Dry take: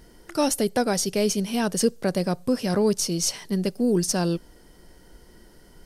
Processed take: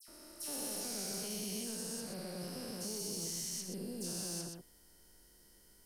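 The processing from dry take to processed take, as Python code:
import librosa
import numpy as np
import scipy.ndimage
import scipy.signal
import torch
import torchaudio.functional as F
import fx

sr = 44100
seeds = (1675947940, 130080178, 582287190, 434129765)

y = fx.spec_steps(x, sr, hold_ms=400)
y = F.preemphasis(torch.from_numpy(y), 0.8).numpy()
y = y + 10.0 ** (-6.5 / 20.0) * np.pad(y, (int(125 * sr / 1000.0), 0))[:len(y)]
y = 10.0 ** (-30.0 / 20.0) * np.tanh(y / 10.0 ** (-30.0 / 20.0))
y = fx.dispersion(y, sr, late='lows', ms=84.0, hz=2500.0)
y = y * librosa.db_to_amplitude(-2.0)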